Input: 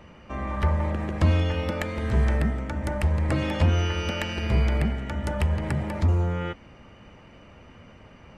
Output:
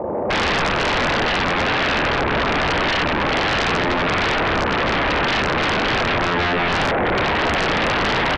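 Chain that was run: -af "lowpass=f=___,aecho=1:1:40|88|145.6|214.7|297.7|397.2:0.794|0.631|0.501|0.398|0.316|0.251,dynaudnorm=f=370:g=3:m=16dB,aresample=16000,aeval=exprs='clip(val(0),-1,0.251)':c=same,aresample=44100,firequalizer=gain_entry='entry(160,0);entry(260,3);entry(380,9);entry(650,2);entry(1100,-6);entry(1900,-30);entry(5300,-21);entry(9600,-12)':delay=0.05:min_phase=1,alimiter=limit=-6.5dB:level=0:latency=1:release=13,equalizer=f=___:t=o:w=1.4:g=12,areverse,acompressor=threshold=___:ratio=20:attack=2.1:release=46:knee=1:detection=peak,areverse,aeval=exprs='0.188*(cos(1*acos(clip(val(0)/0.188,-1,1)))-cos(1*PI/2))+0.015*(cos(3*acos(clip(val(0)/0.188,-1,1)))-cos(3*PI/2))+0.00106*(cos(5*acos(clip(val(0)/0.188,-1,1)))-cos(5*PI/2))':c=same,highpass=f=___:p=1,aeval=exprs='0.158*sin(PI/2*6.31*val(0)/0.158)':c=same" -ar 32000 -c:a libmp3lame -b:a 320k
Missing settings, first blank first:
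1800, 780, -20dB, 230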